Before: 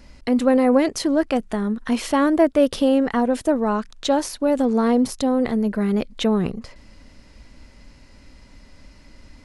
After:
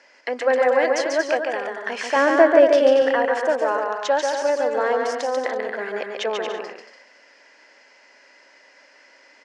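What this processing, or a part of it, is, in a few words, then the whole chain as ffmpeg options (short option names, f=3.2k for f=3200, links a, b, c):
phone speaker on a table: -filter_complex "[0:a]highpass=f=460:w=0.5412,highpass=f=460:w=1.3066,equalizer=f=1.2k:t=q:w=4:g=-4,equalizer=f=1.7k:t=q:w=4:g=9,equalizer=f=3.9k:t=q:w=4:g=-9,lowpass=f=6.4k:w=0.5412,lowpass=f=6.4k:w=1.3066,asettb=1/sr,asplit=3[a][b][c];[a]atrim=end=2.164[d];[b]atrim=start=2.16:end=3.02,asetpts=PTS-STARTPTS,afade=t=in:d=0.004:c=qsin,afade=t=out:st=0.856:d=0.004:c=qsin,lowshelf=f=420:g=11[e];[c]atrim=start=3.016[f];[d][e]acrossfade=d=0.004:c1=hsin:c2=qsin[g];[g][f]acrossfade=d=0.004:c1=qsin:c2=hsin,aecho=1:1:140|231|290.2|328.6|353.6:0.631|0.398|0.251|0.158|0.1,volume=1dB"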